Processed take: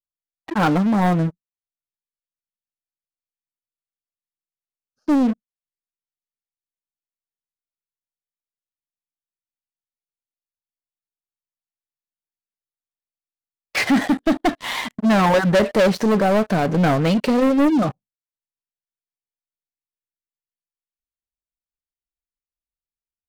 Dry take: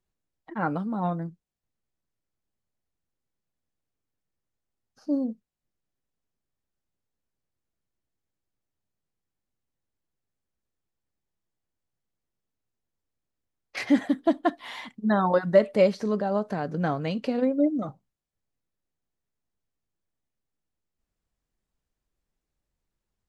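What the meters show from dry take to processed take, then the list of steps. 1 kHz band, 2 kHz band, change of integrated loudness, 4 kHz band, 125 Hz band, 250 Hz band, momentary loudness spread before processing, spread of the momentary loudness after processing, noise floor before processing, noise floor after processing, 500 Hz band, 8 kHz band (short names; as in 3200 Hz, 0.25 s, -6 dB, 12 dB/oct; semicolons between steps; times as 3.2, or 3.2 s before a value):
+8.5 dB, +11.0 dB, +7.0 dB, +13.0 dB, +10.5 dB, +8.5 dB, 16 LU, 10 LU, -85 dBFS, under -85 dBFS, +5.0 dB, n/a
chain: spectral noise reduction 9 dB; sample leveller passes 5; vibrato 3 Hz 51 cents; gain -4.5 dB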